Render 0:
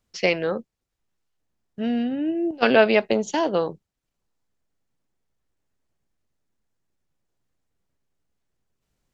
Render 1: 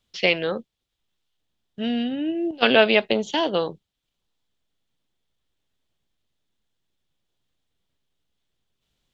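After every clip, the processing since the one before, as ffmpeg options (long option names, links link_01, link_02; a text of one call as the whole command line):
ffmpeg -i in.wav -filter_complex "[0:a]equalizer=frequency=3400:width=2:gain=13.5,acrossover=split=4300[link_01][link_02];[link_02]acompressor=threshold=-40dB:ratio=4:attack=1:release=60[link_03];[link_01][link_03]amix=inputs=2:normalize=0,volume=-1dB" out.wav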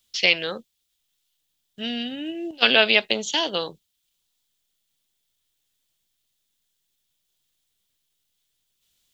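ffmpeg -i in.wav -af "crystalizer=i=7.5:c=0,volume=-6.5dB" out.wav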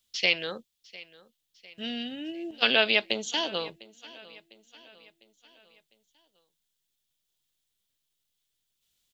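ffmpeg -i in.wav -af "aecho=1:1:702|1404|2106|2808:0.0891|0.0455|0.0232|0.0118,volume=-5.5dB" out.wav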